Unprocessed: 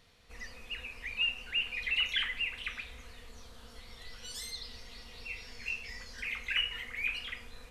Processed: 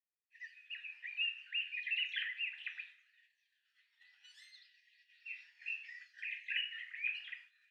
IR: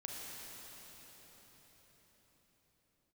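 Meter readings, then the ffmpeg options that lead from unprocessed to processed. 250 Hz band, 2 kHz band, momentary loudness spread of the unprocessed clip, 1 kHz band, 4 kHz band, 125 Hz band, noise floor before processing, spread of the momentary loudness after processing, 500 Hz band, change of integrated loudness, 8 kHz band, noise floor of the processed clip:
under -40 dB, -5.0 dB, 20 LU, under -20 dB, -8.0 dB, under -40 dB, -54 dBFS, 17 LU, under -40 dB, -5.5 dB, under -20 dB, -83 dBFS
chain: -filter_complex "[0:a]asplit=3[a][b][c];[a]bandpass=f=530:t=q:w=8,volume=0dB[d];[b]bandpass=f=1.84k:t=q:w=8,volume=-6dB[e];[c]bandpass=f=2.48k:t=q:w=8,volume=-9dB[f];[d][e][f]amix=inputs=3:normalize=0,agate=range=-33dB:threshold=-57dB:ratio=3:detection=peak,afftfilt=real='re*gte(b*sr/1024,760*pow(1600/760,0.5+0.5*sin(2*PI*0.66*pts/sr)))':imag='im*gte(b*sr/1024,760*pow(1600/760,0.5+0.5*sin(2*PI*0.66*pts/sr)))':win_size=1024:overlap=0.75,volume=5.5dB"

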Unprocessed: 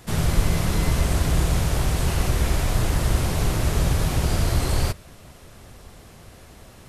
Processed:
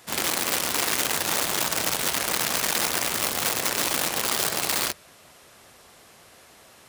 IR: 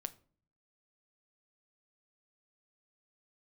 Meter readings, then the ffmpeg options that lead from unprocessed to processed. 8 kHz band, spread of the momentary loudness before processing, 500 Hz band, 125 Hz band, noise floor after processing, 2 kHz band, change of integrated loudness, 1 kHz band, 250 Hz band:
+7.5 dB, 2 LU, -2.0 dB, -21.5 dB, -52 dBFS, +5.0 dB, 0.0 dB, +2.0 dB, -8.0 dB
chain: -af "aeval=exprs='(mod(7.5*val(0)+1,2)-1)/7.5':c=same,highpass=f=740:p=1"

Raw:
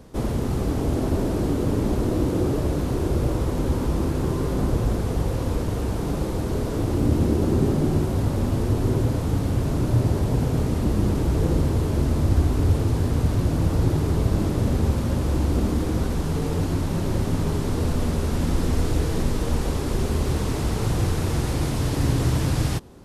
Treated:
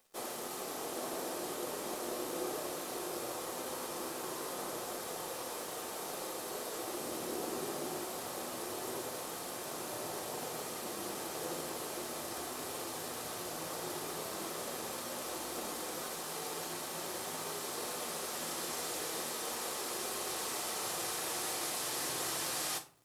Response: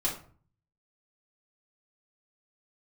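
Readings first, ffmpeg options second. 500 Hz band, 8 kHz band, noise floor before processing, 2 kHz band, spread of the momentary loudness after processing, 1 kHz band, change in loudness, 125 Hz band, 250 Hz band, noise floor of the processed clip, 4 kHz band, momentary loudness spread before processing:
-13.0 dB, +0.5 dB, -26 dBFS, -5.5 dB, 5 LU, -7.0 dB, -14.5 dB, -35.0 dB, -21.5 dB, -42 dBFS, -2.5 dB, 4 LU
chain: -filter_complex "[0:a]highpass=640,highshelf=f=6.2k:g=6.5,aeval=exprs='sgn(val(0))*max(abs(val(0))-0.00224,0)':c=same,asplit=2[a][b];[1:a]atrim=start_sample=2205,highshelf=f=3.8k:g=9[c];[b][c]afir=irnorm=-1:irlink=0,volume=-11dB[d];[a][d]amix=inputs=2:normalize=0,volume=-8dB"

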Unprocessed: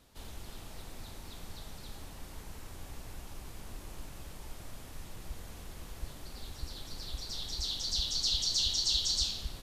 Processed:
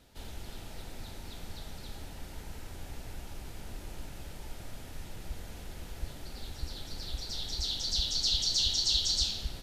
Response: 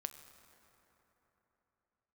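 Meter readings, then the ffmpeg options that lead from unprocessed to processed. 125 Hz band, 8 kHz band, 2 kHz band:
+3.0 dB, +0.5 dB, +2.5 dB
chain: -filter_complex "[0:a]bandreject=f=1.1k:w=5.7,asplit=2[a][b];[1:a]atrim=start_sample=2205,lowpass=6.7k[c];[b][c]afir=irnorm=-1:irlink=0,volume=-6dB[d];[a][d]amix=inputs=2:normalize=0"

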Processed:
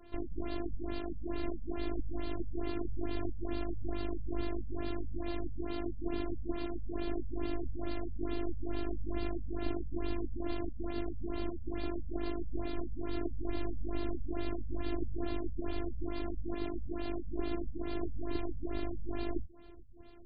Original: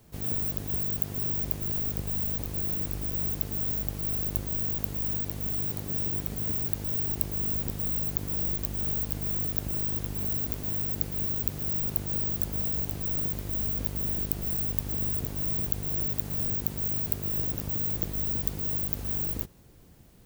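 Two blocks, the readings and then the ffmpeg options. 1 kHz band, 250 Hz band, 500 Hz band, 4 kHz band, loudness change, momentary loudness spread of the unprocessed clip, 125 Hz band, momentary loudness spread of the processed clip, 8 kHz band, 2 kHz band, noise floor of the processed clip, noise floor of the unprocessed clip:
+2.0 dB, +1.5 dB, +4.0 dB, -5.0 dB, -12.0 dB, 2 LU, -9.0 dB, 2 LU, under -35 dB, -1.0 dB, -38 dBFS, -39 dBFS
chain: -af "afftfilt=real='hypot(re,im)*cos(PI*b)':imag='0':win_size=512:overlap=0.75,acontrast=38,afftfilt=real='re*lt(b*sr/1024,200*pow(4900/200,0.5+0.5*sin(2*PI*2.3*pts/sr)))':imag='im*lt(b*sr/1024,200*pow(4900/200,0.5+0.5*sin(2*PI*2.3*pts/sr)))':win_size=1024:overlap=0.75,volume=2.5dB"

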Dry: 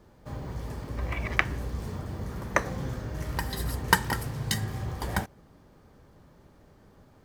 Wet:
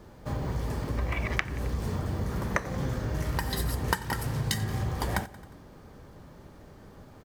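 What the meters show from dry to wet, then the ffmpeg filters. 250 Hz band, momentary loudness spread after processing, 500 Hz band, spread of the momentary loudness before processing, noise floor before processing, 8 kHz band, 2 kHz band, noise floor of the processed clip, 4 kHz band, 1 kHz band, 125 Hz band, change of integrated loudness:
+2.0 dB, 21 LU, +1.0 dB, 12 LU, -57 dBFS, -2.0 dB, -3.5 dB, -51 dBFS, -1.5 dB, -2.5 dB, +2.5 dB, 0.0 dB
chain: -filter_complex "[0:a]asplit=2[a][b];[b]aecho=0:1:89|178|267|356:0.075|0.0412|0.0227|0.0125[c];[a][c]amix=inputs=2:normalize=0,acompressor=threshold=-33dB:ratio=4,volume=6.5dB"

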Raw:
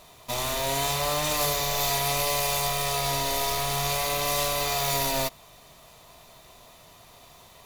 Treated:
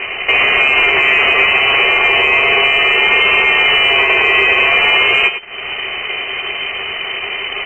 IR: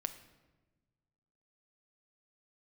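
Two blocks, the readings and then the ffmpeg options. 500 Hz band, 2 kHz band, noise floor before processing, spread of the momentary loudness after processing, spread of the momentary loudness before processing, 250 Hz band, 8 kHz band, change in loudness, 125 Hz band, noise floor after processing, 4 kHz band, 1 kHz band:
+10.0 dB, +25.0 dB, -52 dBFS, 11 LU, 3 LU, +9.0 dB, under -15 dB, +15.0 dB, n/a, -24 dBFS, +16.0 dB, +10.0 dB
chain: -af "acontrast=57,highpass=f=52:p=1,flanger=delay=9.2:depth=5.2:regen=-44:speed=0.92:shape=triangular,asubboost=boost=2.5:cutoff=94,acompressor=threshold=-46dB:ratio=2.5,aeval=exprs='sgn(val(0))*max(abs(val(0))-0.00126,0)':c=same,aecho=1:1:99:0.266,lowpass=f=2.6k:t=q:w=0.5098,lowpass=f=2.6k:t=q:w=0.6013,lowpass=f=2.6k:t=q:w=0.9,lowpass=f=2.6k:t=q:w=2.563,afreqshift=-3100,equalizer=f=390:w=6.8:g=12,aeval=exprs='0.0316*(cos(1*acos(clip(val(0)/0.0316,-1,1)))-cos(1*PI/2))+0.000891*(cos(3*acos(clip(val(0)/0.0316,-1,1)))-cos(3*PI/2))':c=same,alimiter=level_in=35dB:limit=-1dB:release=50:level=0:latency=1,volume=-1dB"

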